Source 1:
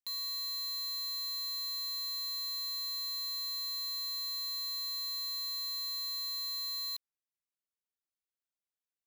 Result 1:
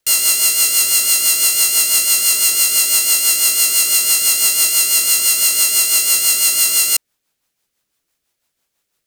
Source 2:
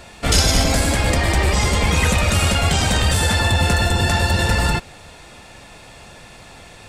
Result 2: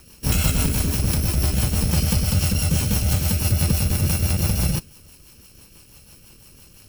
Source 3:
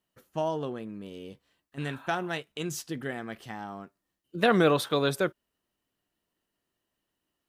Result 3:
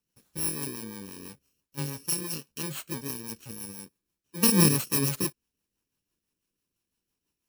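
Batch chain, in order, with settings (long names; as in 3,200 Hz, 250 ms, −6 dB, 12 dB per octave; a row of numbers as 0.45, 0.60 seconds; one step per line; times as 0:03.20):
samples in bit-reversed order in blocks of 64 samples
rotating-speaker cabinet horn 6 Hz
dynamic equaliser 150 Hz, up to +8 dB, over −37 dBFS, Q 1.1
normalise the peak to −6 dBFS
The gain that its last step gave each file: +26.5, −3.5, +2.0 decibels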